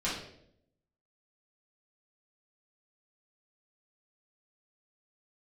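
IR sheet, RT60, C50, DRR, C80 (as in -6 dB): 0.70 s, 3.0 dB, -9.0 dB, 7.5 dB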